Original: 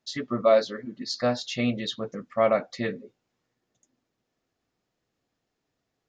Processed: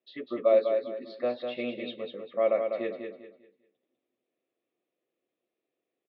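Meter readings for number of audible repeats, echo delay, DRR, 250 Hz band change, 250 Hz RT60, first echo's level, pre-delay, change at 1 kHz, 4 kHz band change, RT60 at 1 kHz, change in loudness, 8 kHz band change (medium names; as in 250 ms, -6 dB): 3, 199 ms, no reverb, -8.0 dB, no reverb, -6.0 dB, no reverb, -7.5 dB, -11.5 dB, no reverb, -3.0 dB, no reading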